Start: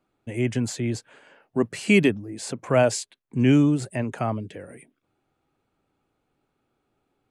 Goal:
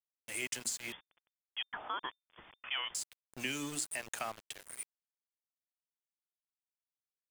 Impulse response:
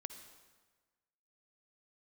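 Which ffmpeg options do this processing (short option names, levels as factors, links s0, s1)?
-filter_complex "[0:a]aderivative,bandreject=f=60:t=h:w=6,bandreject=f=120:t=h:w=6,bandreject=f=180:t=h:w=6,bandreject=f=240:t=h:w=6,bandreject=f=300:t=h:w=6,bandreject=f=360:t=h:w=6,bandreject=f=420:t=h:w=6,bandreject=f=480:t=h:w=6,alimiter=level_in=1.5:limit=0.0631:level=0:latency=1:release=138,volume=0.668,acompressor=threshold=0.00631:ratio=8,aeval=exprs='val(0)*gte(abs(val(0)),0.00224)':c=same,asettb=1/sr,asplit=3[s0][s1][s2];[s0]atrim=end=0.924[s3];[s1]atrim=start=0.92:end=2.95,asetpts=PTS-STARTPTS,afade=t=in:d=0.004:c=qsin,afade=t=out:st=2.026:d=0.004:c=qsin,lowpass=f=3100:t=q:w=0.5098,lowpass=f=3100:t=q:w=0.6013,lowpass=f=3100:t=q:w=0.9,lowpass=f=3100:t=q:w=2.563,afreqshift=-3600[s4];[s2]atrim=start=2.946[s5];[s3][s4]acrossfade=d=0.004:c1=hsin:c2=qsin[s6];[s6][s5]acrossfade=d=0.004:c1=qsin:c2=hsin,volume=3.35"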